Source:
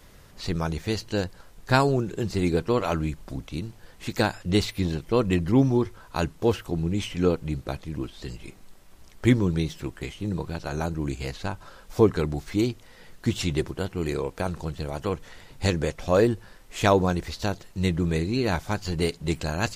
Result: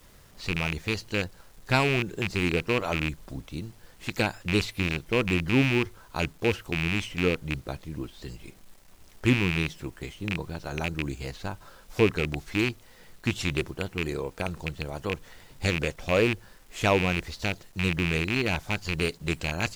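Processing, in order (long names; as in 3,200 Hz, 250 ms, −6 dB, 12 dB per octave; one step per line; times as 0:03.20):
loose part that buzzes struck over −23 dBFS, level −12 dBFS
bit reduction 9 bits
level −3.5 dB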